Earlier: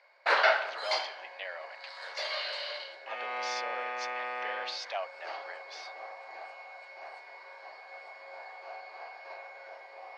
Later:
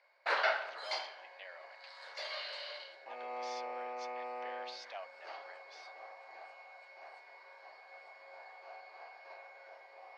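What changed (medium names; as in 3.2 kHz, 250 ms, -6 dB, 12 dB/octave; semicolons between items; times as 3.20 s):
speech -10.5 dB; first sound -7.0 dB; second sound: add boxcar filter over 27 samples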